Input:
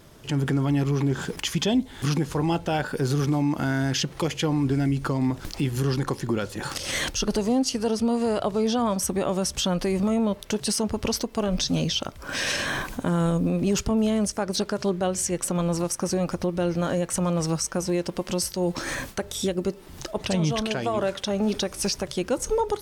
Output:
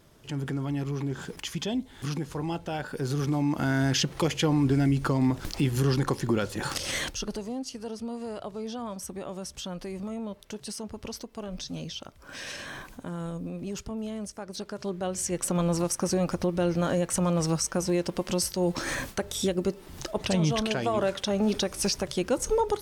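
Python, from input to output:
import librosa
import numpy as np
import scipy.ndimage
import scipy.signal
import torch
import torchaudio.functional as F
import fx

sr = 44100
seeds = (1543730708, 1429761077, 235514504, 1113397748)

y = fx.gain(x, sr, db=fx.line((2.77, -7.5), (3.84, 0.0), (6.77, 0.0), (7.49, -12.0), (14.5, -12.0), (15.53, -1.0)))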